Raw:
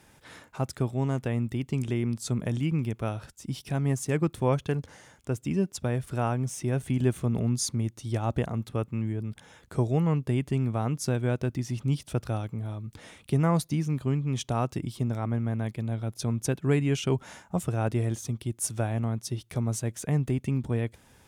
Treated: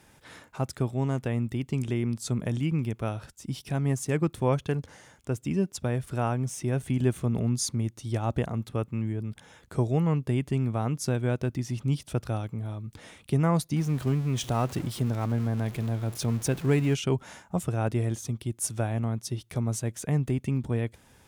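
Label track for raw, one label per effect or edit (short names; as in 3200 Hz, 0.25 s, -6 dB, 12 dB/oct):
13.760000	16.950000	zero-crossing step of -36.5 dBFS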